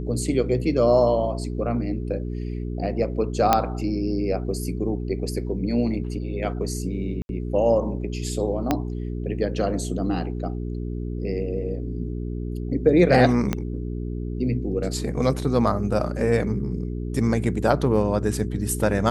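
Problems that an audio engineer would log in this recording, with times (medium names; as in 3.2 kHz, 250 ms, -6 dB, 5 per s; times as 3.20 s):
hum 60 Hz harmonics 7 -29 dBFS
3.53 s: pop -3 dBFS
7.22–7.29 s: dropout 71 ms
8.71 s: pop -7 dBFS
13.53 s: pop -10 dBFS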